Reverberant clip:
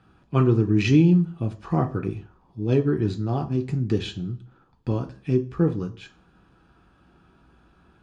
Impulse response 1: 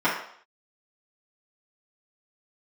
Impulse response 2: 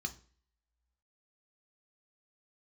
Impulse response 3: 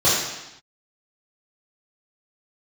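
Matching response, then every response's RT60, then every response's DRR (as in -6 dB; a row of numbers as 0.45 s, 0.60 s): 2; 0.60 s, no single decay rate, 0.90 s; -11.5 dB, 4.5 dB, -10.5 dB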